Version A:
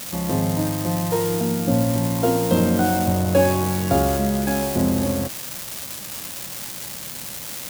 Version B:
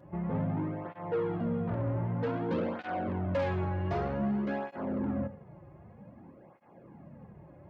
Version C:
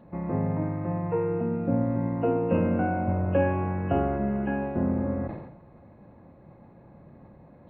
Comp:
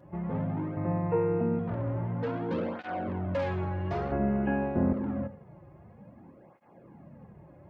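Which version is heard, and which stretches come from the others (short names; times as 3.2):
B
0.77–1.59 from C
4.12–4.93 from C
not used: A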